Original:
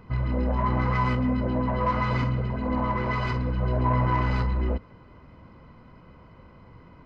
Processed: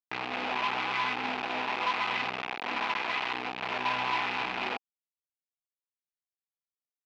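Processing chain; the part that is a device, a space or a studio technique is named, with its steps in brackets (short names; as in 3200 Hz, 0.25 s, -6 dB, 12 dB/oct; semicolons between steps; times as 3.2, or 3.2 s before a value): hand-held game console (bit-crush 4-bit; speaker cabinet 430–4100 Hz, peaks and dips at 550 Hz -10 dB, 800 Hz +7 dB, 2500 Hz +9 dB); gain -6 dB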